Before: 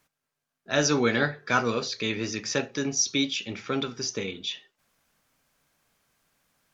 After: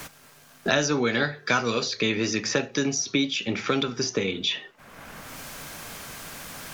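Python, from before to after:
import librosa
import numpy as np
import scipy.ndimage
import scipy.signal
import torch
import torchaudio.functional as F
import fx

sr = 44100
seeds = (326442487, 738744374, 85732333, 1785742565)

y = fx.band_squash(x, sr, depth_pct=100)
y = y * librosa.db_to_amplitude(1.5)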